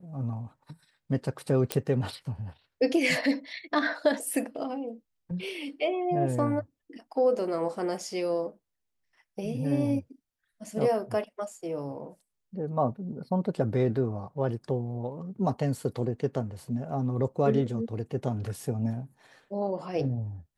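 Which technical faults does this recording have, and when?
1.72 pop -10 dBFS

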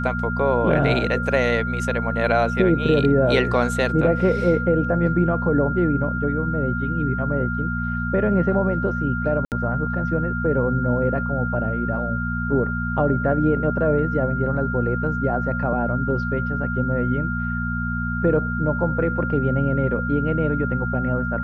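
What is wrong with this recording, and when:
hum 60 Hz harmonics 4 -26 dBFS
tone 1400 Hz -27 dBFS
9.45–9.52 gap 68 ms

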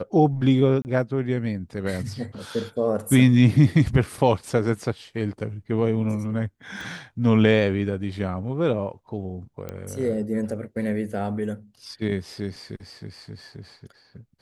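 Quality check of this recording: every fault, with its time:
0.82–0.85 gap 29 ms
6.81 pop
9.69 pop -19 dBFS

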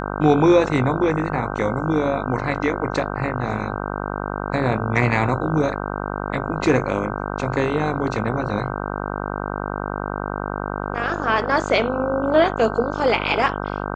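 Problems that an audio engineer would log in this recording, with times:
buzz 50 Hz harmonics 31 -27 dBFS

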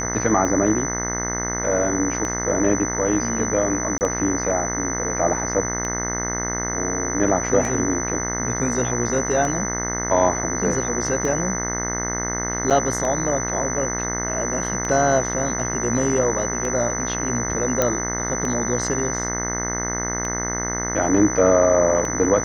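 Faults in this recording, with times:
buzz 60 Hz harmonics 35 -28 dBFS
tick 33 1/3 rpm -14 dBFS
tone 6000 Hz -26 dBFS
3.98–4.01 gap 29 ms
12.7–12.71 gap 7.2 ms
17.82 pop -4 dBFS

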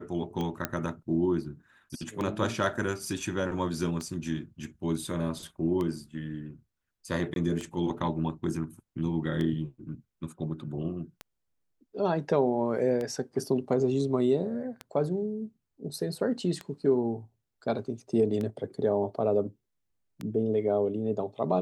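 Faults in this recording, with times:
tick 33 1/3 rpm -21 dBFS
0.65 pop -12 dBFS
7.34–7.36 gap 22 ms

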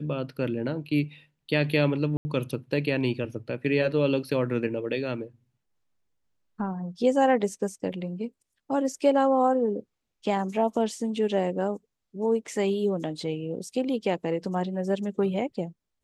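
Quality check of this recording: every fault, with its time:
2.17–2.25 gap 80 ms

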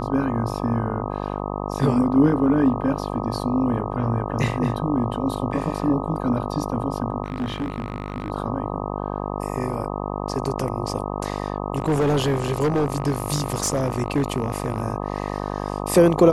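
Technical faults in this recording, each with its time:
buzz 50 Hz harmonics 25 -28 dBFS
7.24–8.3 clipped -21.5 dBFS
11.78–14.82 clipped -16 dBFS

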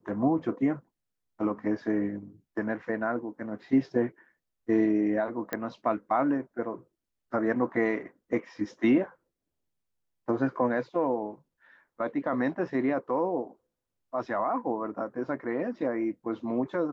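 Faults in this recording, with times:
5.53 pop -16 dBFS

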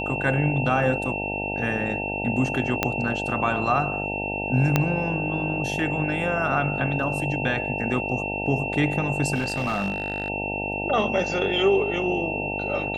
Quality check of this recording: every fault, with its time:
buzz 50 Hz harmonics 18 -31 dBFS
tone 2700 Hz -29 dBFS
2.83 pop -5 dBFS
4.76 pop -5 dBFS
9.34–10.3 clipped -21 dBFS

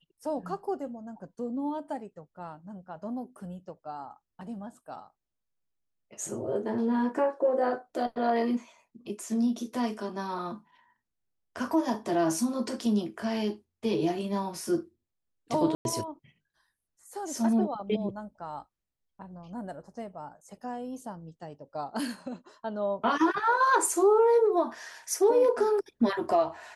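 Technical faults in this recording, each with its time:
15.75–15.85 gap 0.101 s

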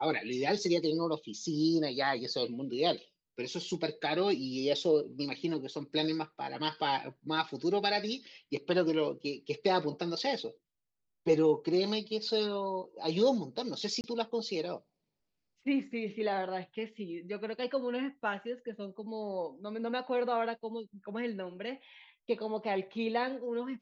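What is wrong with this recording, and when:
14.01–14.04 gap 29 ms

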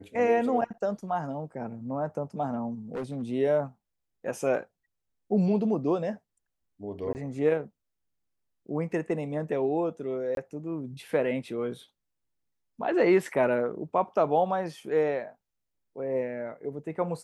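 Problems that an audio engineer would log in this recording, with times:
2.94–3.23 clipped -29 dBFS
7.13–7.15 gap 19 ms
10.35–10.37 gap 22 ms

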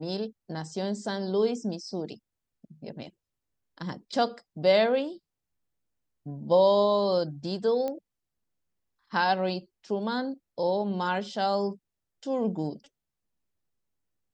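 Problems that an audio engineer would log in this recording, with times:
7.88 pop -20 dBFS

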